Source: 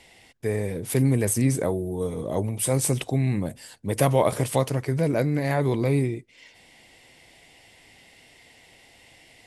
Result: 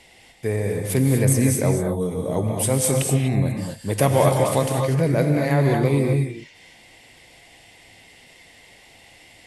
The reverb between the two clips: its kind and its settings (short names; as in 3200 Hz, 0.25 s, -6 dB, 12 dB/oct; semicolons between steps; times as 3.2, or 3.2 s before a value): non-linear reverb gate 0.27 s rising, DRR 2 dB; gain +2 dB